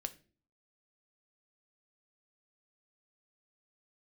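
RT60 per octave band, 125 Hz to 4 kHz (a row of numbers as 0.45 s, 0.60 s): 0.60 s, 0.60 s, 0.50 s, 0.30 s, 0.35 s, 0.30 s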